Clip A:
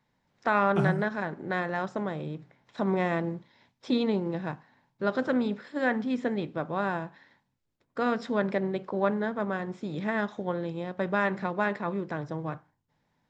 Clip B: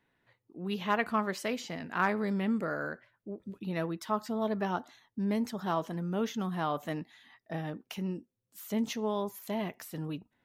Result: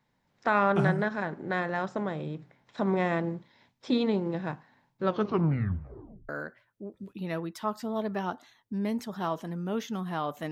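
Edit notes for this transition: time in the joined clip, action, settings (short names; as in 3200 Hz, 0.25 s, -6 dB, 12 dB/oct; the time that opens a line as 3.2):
clip A
4.99 tape stop 1.30 s
6.29 switch to clip B from 2.75 s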